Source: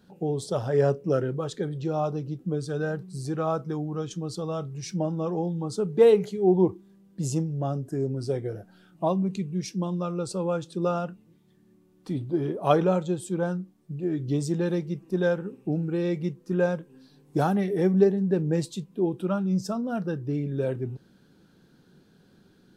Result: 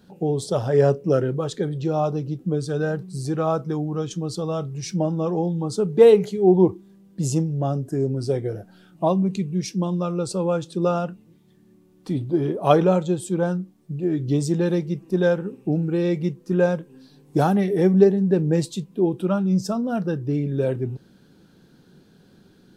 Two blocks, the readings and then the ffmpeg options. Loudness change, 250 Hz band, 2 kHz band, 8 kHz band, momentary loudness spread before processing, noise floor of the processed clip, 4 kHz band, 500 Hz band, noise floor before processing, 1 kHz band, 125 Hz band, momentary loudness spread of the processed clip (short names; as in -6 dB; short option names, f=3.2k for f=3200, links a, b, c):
+5.0 dB, +5.0 dB, +3.5 dB, +5.0 dB, 11 LU, -55 dBFS, +5.0 dB, +5.0 dB, -60 dBFS, +4.5 dB, +5.0 dB, 11 LU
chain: -af "equalizer=f=1.4k:w=1.5:g=-2,volume=5dB"